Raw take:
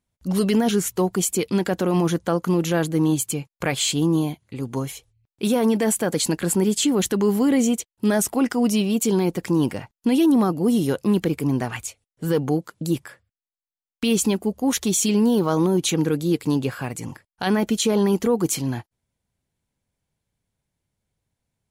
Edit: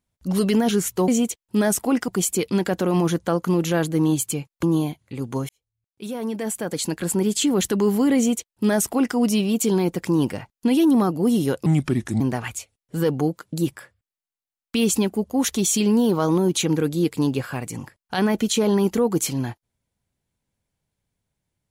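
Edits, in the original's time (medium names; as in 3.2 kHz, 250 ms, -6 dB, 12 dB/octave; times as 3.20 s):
3.63–4.04 s: delete
4.90–6.95 s: fade in
7.57–8.57 s: copy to 1.08 s
11.07–11.49 s: speed 77%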